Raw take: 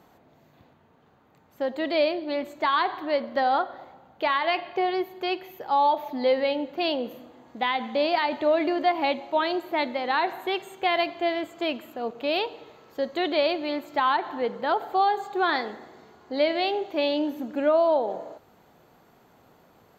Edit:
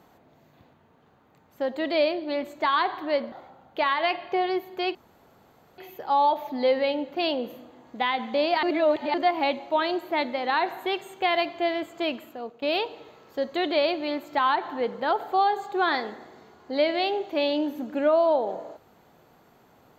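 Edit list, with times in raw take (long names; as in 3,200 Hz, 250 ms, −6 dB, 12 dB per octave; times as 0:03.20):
0:03.32–0:03.76: remove
0:05.39: splice in room tone 0.83 s
0:08.24–0:08.75: reverse
0:11.78–0:12.23: fade out linear, to −13 dB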